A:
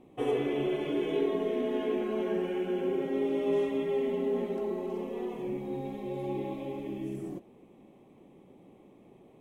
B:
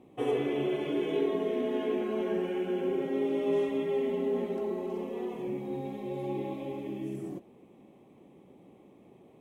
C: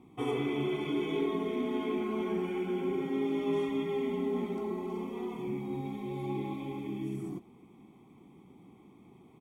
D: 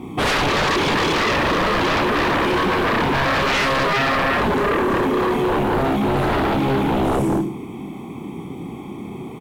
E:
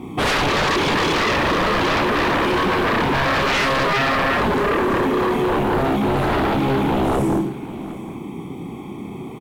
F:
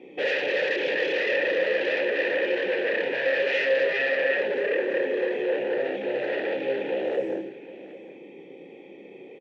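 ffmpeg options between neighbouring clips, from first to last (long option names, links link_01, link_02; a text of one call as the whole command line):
ffmpeg -i in.wav -af "highpass=50" out.wav
ffmpeg -i in.wav -af "aecho=1:1:0.9:0.77,volume=-1.5dB" out.wav
ffmpeg -i in.wav -af "aecho=1:1:30|64.5|104.2|149.8|202.3:0.631|0.398|0.251|0.158|0.1,aeval=exprs='0.141*sin(PI/2*7.08*val(0)/0.141)':channel_layout=same,volume=1.5dB" out.wav
ffmpeg -i in.wav -af "aecho=1:1:762:0.126" out.wav
ffmpeg -i in.wav -filter_complex "[0:a]asplit=3[link_01][link_02][link_03];[link_01]bandpass=frequency=530:width_type=q:width=8,volume=0dB[link_04];[link_02]bandpass=frequency=1840:width_type=q:width=8,volume=-6dB[link_05];[link_03]bandpass=frequency=2480:width_type=q:width=8,volume=-9dB[link_06];[link_04][link_05][link_06]amix=inputs=3:normalize=0,highpass=210,equalizer=frequency=240:width_type=q:width=4:gain=-5,equalizer=frequency=670:width_type=q:width=4:gain=-6,equalizer=frequency=1300:width_type=q:width=4:gain=-6,lowpass=frequency=6600:width=0.5412,lowpass=frequency=6600:width=1.3066,volume=6dB" out.wav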